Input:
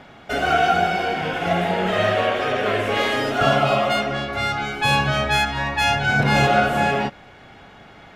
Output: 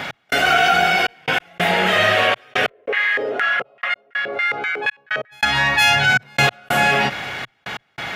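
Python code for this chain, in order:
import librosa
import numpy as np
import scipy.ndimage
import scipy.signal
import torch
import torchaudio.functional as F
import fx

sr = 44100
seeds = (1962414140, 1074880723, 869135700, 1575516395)

y = fx.step_gate(x, sr, bpm=141, pattern='x..xxxxxxx..', floor_db=-60.0, edge_ms=4.5)
y = fx.graphic_eq_10(y, sr, hz=(125, 2000, 8000), db=(7, 4, -3))
y = fx.filter_lfo_bandpass(y, sr, shape='square', hz=fx.line((2.68, 1.7), (5.31, 5.8)), low_hz=460.0, high_hz=1800.0, q=4.6, at=(2.68, 5.31), fade=0.02)
y = fx.tilt_eq(y, sr, slope=3.0)
y = fx.env_flatten(y, sr, amount_pct=50)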